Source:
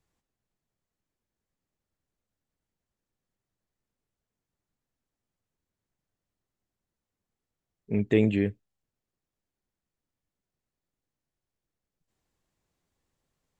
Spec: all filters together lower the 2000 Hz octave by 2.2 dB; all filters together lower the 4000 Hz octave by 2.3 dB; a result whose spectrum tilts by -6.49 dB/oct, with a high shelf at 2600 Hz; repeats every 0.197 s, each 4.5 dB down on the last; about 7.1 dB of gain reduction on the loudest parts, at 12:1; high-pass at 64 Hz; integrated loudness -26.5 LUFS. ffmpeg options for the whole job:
-af "highpass=64,equalizer=f=2k:t=o:g=-3.5,highshelf=f=2.6k:g=6,equalizer=f=4k:t=o:g=-6.5,acompressor=threshold=-23dB:ratio=12,aecho=1:1:197|394|591|788|985|1182|1379|1576|1773:0.596|0.357|0.214|0.129|0.0772|0.0463|0.0278|0.0167|0.01,volume=4.5dB"

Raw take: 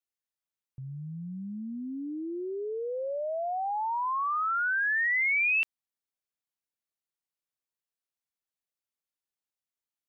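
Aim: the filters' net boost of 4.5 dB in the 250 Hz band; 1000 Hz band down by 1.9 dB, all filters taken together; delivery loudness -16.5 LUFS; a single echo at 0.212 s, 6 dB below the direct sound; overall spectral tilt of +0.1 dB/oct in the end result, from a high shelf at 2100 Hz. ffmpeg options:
-af "equalizer=f=250:t=o:g=6,equalizer=f=1k:t=o:g=-4,highshelf=f=2.1k:g=4.5,aecho=1:1:212:0.501,volume=10.5dB"

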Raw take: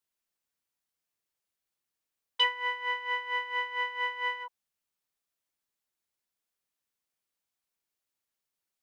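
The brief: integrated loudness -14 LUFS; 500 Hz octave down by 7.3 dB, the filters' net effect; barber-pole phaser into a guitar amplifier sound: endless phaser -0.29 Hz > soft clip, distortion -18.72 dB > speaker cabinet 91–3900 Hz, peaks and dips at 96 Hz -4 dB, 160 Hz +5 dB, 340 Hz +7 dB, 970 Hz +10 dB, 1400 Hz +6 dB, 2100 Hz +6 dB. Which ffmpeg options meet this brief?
-filter_complex "[0:a]equalizer=f=500:t=o:g=-8.5,asplit=2[a][b];[b]afreqshift=-0.29[c];[a][c]amix=inputs=2:normalize=1,asoftclip=threshold=-22dB,highpass=91,equalizer=f=96:t=q:w=4:g=-4,equalizer=f=160:t=q:w=4:g=5,equalizer=f=340:t=q:w=4:g=7,equalizer=f=970:t=q:w=4:g=10,equalizer=f=1.4k:t=q:w=4:g=6,equalizer=f=2.1k:t=q:w=4:g=6,lowpass=f=3.9k:w=0.5412,lowpass=f=3.9k:w=1.3066,volume=15dB"

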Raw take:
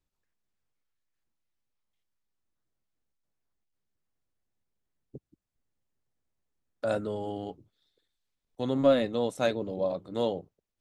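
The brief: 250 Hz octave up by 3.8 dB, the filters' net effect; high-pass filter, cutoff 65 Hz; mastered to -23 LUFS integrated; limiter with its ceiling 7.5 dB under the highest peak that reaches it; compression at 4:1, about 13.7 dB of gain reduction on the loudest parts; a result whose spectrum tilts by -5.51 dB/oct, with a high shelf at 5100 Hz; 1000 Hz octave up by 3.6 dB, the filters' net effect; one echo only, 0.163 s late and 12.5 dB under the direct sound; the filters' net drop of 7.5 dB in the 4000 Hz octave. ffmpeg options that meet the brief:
-af "highpass=65,equalizer=f=250:t=o:g=4,equalizer=f=1k:t=o:g=5.5,equalizer=f=4k:t=o:g=-7,highshelf=f=5.1k:g=-6,acompressor=threshold=-31dB:ratio=4,alimiter=level_in=4dB:limit=-24dB:level=0:latency=1,volume=-4dB,aecho=1:1:163:0.237,volume=15dB"

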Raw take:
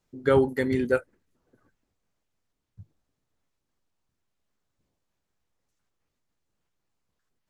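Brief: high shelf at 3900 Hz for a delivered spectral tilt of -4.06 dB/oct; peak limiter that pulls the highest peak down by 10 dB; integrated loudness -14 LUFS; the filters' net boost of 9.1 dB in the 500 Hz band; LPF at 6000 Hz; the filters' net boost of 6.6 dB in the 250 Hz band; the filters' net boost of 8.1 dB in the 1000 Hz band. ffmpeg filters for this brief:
-af "lowpass=6k,equalizer=f=250:t=o:g=4.5,equalizer=f=500:t=o:g=8,equalizer=f=1k:t=o:g=8,highshelf=f=3.9k:g=4.5,volume=8dB,alimiter=limit=-4dB:level=0:latency=1"

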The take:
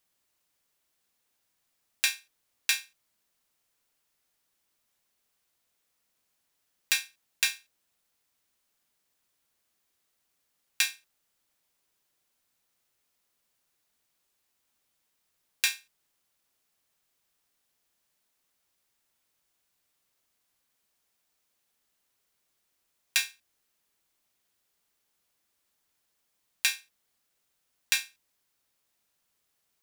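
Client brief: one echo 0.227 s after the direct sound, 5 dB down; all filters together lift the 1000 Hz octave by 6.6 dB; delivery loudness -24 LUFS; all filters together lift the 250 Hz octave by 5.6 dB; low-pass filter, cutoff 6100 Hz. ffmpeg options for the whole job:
-af "lowpass=6.1k,equalizer=f=250:t=o:g=7,equalizer=f=1k:t=o:g=8,aecho=1:1:227:0.562,volume=6.5dB"

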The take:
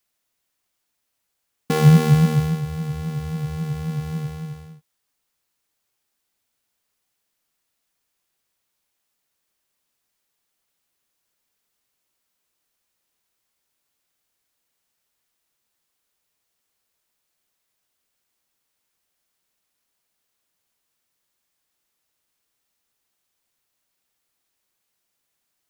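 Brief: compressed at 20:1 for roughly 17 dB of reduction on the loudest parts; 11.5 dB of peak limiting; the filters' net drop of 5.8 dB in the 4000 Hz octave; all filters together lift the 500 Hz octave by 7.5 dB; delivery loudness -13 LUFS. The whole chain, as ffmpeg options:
-af "equalizer=f=500:t=o:g=8,equalizer=f=4k:t=o:g=-8,acompressor=threshold=-23dB:ratio=20,volume=18.5dB,alimiter=limit=-4.5dB:level=0:latency=1"

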